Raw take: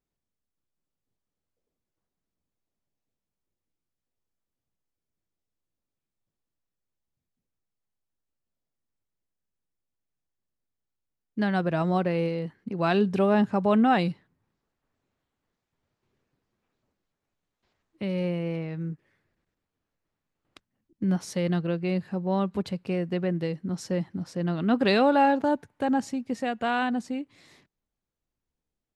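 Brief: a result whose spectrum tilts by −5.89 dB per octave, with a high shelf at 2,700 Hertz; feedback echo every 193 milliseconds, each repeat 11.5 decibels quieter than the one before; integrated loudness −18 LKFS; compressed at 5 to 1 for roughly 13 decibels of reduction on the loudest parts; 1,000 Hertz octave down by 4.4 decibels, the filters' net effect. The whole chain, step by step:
parametric band 1,000 Hz −5.5 dB
high-shelf EQ 2,700 Hz −5 dB
downward compressor 5 to 1, threshold −34 dBFS
repeating echo 193 ms, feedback 27%, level −11.5 dB
level +19.5 dB

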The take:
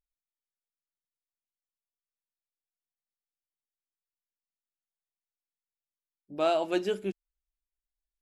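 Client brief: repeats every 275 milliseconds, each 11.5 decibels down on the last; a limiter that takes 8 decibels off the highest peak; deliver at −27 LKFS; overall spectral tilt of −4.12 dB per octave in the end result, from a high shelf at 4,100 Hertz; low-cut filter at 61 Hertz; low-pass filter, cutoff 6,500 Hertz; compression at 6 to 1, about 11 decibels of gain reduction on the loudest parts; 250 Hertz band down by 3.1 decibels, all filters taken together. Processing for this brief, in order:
high-pass filter 61 Hz
low-pass filter 6,500 Hz
parametric band 250 Hz −5.5 dB
high-shelf EQ 4,100 Hz −5 dB
downward compressor 6 to 1, threshold −35 dBFS
brickwall limiter −33 dBFS
repeating echo 275 ms, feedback 27%, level −11.5 dB
level +17.5 dB

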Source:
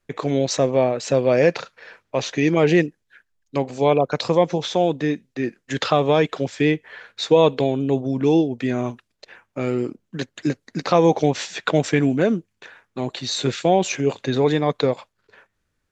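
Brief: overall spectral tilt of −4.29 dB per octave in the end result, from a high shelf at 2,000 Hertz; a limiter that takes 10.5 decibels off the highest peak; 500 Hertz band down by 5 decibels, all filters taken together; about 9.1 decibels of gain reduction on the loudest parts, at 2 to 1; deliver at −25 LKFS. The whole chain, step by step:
parametric band 500 Hz −6.5 dB
high-shelf EQ 2,000 Hz +6 dB
downward compressor 2 to 1, threshold −30 dBFS
level +7.5 dB
brickwall limiter −13.5 dBFS

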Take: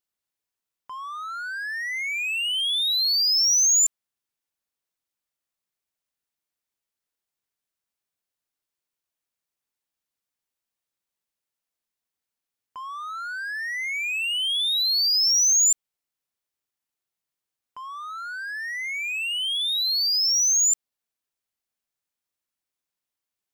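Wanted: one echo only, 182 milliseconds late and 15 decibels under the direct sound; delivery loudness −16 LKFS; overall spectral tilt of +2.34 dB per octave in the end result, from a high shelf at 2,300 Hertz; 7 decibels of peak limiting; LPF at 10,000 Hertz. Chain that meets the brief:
low-pass filter 10,000 Hz
high-shelf EQ 2,300 Hz +8.5 dB
brickwall limiter −14.5 dBFS
single-tap delay 182 ms −15 dB
level +0.5 dB

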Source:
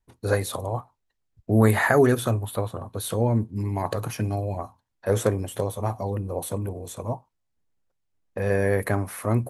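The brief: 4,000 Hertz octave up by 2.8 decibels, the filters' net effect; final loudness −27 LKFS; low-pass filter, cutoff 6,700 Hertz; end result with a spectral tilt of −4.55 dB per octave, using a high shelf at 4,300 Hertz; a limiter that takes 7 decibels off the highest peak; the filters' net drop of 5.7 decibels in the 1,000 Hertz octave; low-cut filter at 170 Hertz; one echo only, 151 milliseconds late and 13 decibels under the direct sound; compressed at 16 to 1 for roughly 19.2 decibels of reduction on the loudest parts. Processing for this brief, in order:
high-pass filter 170 Hz
low-pass filter 6,700 Hz
parametric band 1,000 Hz −8 dB
parametric band 4,000 Hz +8 dB
high-shelf EQ 4,300 Hz −8 dB
downward compressor 16 to 1, threshold −34 dBFS
brickwall limiter −29.5 dBFS
single-tap delay 151 ms −13 dB
level +14.5 dB

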